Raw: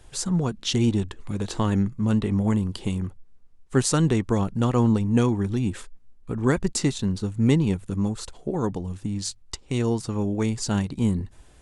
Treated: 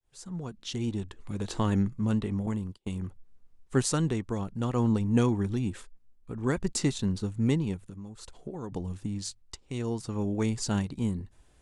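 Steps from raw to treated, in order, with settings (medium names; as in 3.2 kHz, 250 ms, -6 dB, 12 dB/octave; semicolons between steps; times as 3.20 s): fade-in on the opening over 0.94 s; 2.46–2.89 s: gate -28 dBFS, range -34 dB; 7.88–8.72 s: compression 4:1, threshold -32 dBFS, peak gain reduction 10 dB; tremolo 0.57 Hz, depth 49%; trim -3.5 dB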